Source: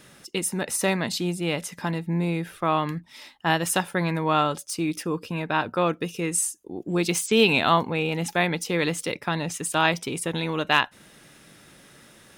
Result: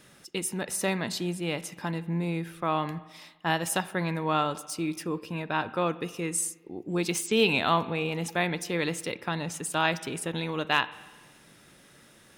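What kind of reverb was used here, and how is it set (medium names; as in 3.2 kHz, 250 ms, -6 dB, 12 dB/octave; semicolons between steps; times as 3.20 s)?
spring tank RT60 1.3 s, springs 42/51 ms, chirp 20 ms, DRR 16 dB; trim -4.5 dB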